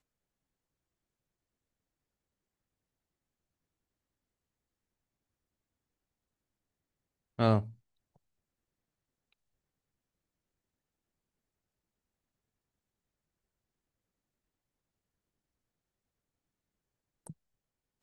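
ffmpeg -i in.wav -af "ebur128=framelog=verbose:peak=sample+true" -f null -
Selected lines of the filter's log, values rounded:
Integrated loudness:
  I:         -29.7 LUFS
  Threshold: -43.8 LUFS
Loudness range:
  LRA:         3.6 LU
  Threshold: -58.9 LUFS
  LRA low:   -41.0 LUFS
  LRA high:  -37.5 LUFS
Sample peak:
  Peak:      -12.2 dBFS
True peak:
  Peak:      -12.2 dBFS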